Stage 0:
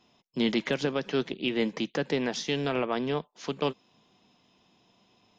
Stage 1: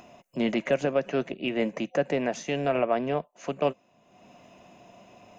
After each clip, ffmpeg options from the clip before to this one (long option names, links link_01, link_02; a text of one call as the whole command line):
ffmpeg -i in.wav -af "acompressor=mode=upward:threshold=-42dB:ratio=2.5,superequalizer=8b=2.82:13b=0.282:14b=0.316" out.wav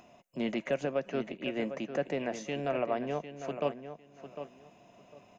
ffmpeg -i in.wav -filter_complex "[0:a]asplit=2[link_01][link_02];[link_02]adelay=752,lowpass=frequency=3600:poles=1,volume=-10dB,asplit=2[link_03][link_04];[link_04]adelay=752,lowpass=frequency=3600:poles=1,volume=0.21,asplit=2[link_05][link_06];[link_06]adelay=752,lowpass=frequency=3600:poles=1,volume=0.21[link_07];[link_01][link_03][link_05][link_07]amix=inputs=4:normalize=0,volume=-6.5dB" out.wav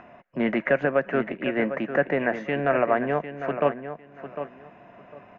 ffmpeg -i in.wav -af "lowpass=frequency=1700:width_type=q:width=3,volume=8dB" out.wav